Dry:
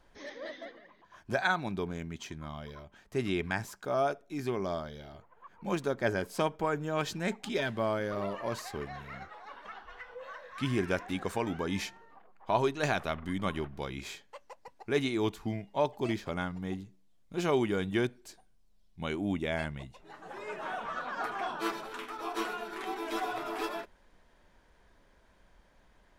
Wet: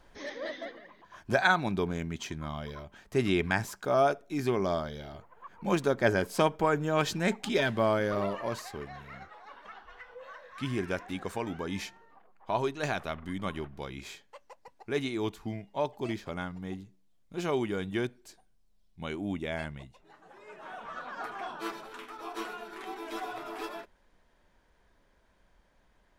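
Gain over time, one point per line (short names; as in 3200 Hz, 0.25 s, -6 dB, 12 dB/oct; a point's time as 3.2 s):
8.16 s +4.5 dB
8.77 s -2 dB
19.75 s -2 dB
20.39 s -10.5 dB
20.97 s -3.5 dB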